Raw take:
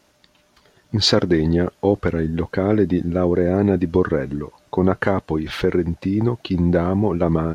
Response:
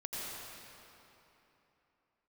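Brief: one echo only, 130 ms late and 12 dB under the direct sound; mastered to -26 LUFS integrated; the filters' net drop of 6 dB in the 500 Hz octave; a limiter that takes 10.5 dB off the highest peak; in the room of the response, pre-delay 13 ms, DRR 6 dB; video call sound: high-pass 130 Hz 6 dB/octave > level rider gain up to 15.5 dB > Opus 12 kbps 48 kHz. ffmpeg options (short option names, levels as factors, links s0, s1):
-filter_complex "[0:a]equalizer=f=500:t=o:g=-7.5,alimiter=limit=0.158:level=0:latency=1,aecho=1:1:130:0.251,asplit=2[s0][s1];[1:a]atrim=start_sample=2205,adelay=13[s2];[s1][s2]afir=irnorm=-1:irlink=0,volume=0.376[s3];[s0][s3]amix=inputs=2:normalize=0,highpass=f=130:p=1,dynaudnorm=m=5.96,volume=1.33" -ar 48000 -c:a libopus -b:a 12k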